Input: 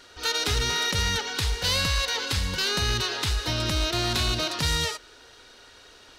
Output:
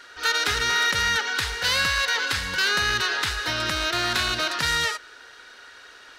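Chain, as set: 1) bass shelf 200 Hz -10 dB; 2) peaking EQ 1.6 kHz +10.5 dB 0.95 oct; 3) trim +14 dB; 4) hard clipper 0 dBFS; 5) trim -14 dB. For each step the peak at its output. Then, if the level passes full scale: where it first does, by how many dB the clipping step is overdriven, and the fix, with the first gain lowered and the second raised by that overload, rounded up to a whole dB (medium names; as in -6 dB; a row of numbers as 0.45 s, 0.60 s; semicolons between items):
-16.5 dBFS, -10.5 dBFS, +3.5 dBFS, 0.0 dBFS, -14.0 dBFS; step 3, 3.5 dB; step 3 +10 dB, step 5 -10 dB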